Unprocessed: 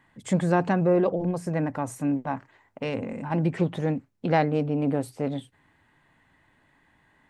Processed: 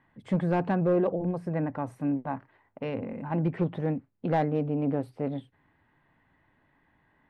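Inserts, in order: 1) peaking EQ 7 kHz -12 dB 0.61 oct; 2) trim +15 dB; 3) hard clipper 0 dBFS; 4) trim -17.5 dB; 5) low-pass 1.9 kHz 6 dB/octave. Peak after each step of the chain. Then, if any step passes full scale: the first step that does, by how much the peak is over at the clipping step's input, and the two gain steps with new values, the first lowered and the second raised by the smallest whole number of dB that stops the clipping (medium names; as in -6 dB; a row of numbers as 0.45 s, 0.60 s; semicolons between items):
-8.5 dBFS, +6.5 dBFS, 0.0 dBFS, -17.5 dBFS, -17.5 dBFS; step 2, 6.5 dB; step 2 +8 dB, step 4 -10.5 dB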